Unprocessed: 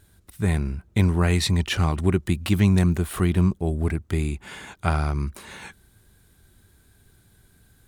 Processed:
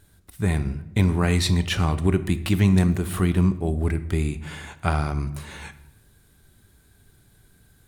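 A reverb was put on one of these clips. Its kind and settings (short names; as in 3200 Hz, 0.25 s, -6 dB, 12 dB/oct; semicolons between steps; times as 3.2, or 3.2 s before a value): shoebox room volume 290 m³, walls mixed, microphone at 0.31 m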